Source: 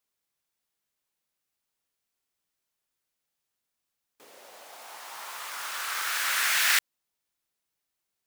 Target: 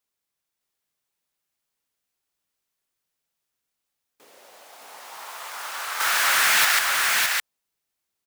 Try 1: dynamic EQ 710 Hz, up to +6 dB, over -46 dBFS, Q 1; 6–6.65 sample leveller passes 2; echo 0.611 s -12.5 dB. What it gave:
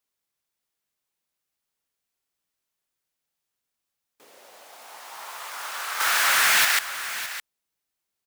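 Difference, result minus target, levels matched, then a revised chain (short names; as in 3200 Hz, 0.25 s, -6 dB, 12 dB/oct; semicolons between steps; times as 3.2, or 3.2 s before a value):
echo-to-direct -10 dB
dynamic EQ 710 Hz, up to +6 dB, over -46 dBFS, Q 1; 6–6.65 sample leveller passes 2; echo 0.611 s -2.5 dB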